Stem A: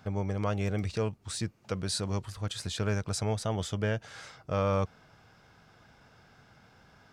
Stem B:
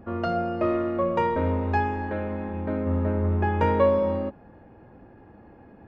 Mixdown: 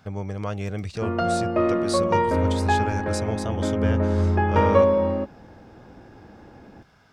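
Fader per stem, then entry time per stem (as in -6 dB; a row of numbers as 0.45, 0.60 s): +1.0, +3.0 dB; 0.00, 0.95 s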